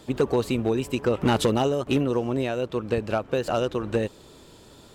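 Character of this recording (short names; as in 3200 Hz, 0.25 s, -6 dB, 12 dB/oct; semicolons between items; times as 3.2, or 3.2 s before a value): noise floor -50 dBFS; spectral tilt -5.5 dB/oct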